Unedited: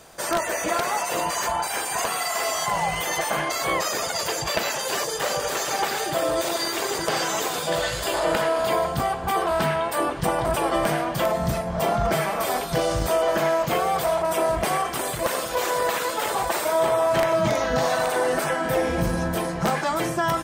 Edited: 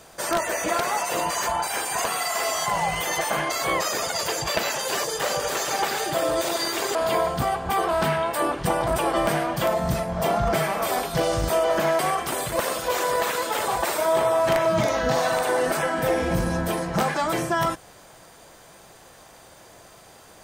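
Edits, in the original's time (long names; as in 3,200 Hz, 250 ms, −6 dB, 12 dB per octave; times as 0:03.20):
0:06.95–0:08.53: remove
0:13.57–0:14.66: remove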